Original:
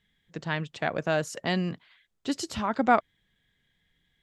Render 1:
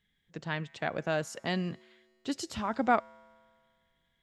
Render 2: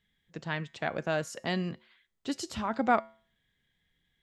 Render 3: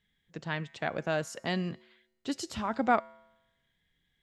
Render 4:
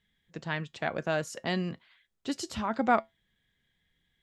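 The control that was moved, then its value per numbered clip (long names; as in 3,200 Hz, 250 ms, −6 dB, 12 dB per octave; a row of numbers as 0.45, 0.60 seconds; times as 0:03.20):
tuned comb filter, decay: 2, 0.43, 0.95, 0.18 seconds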